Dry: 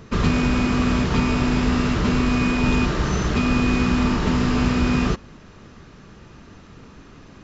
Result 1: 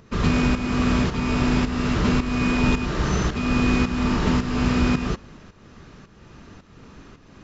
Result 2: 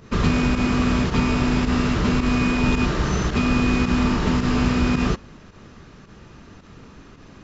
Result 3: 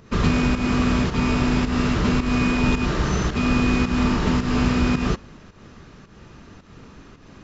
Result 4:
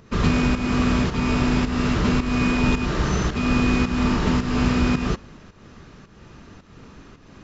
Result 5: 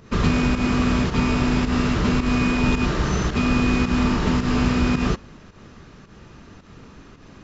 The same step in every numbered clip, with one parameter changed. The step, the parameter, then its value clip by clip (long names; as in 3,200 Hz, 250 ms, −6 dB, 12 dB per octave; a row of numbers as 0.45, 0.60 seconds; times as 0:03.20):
fake sidechain pumping, release: 488, 74, 201, 308, 130 milliseconds